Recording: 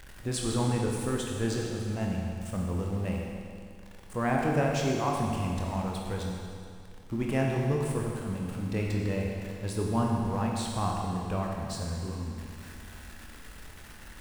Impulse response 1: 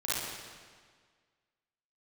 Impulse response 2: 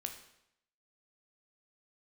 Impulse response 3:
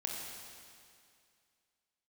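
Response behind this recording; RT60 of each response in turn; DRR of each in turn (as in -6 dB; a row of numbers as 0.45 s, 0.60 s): 3; 1.7 s, 0.75 s, 2.3 s; -10.5 dB, 4.5 dB, -1.5 dB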